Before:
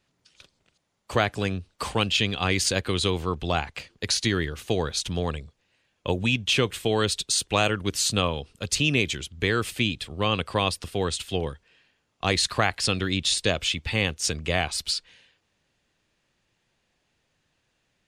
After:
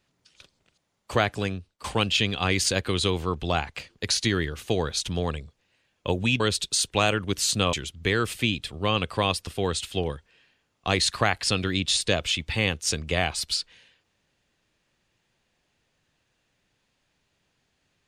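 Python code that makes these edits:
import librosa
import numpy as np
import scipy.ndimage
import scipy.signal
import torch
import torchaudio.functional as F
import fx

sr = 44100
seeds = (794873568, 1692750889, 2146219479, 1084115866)

y = fx.edit(x, sr, fx.fade_out_to(start_s=1.24, length_s=0.6, curve='qsin', floor_db=-23.0),
    fx.cut(start_s=6.4, length_s=0.57),
    fx.cut(start_s=8.3, length_s=0.8), tone=tone)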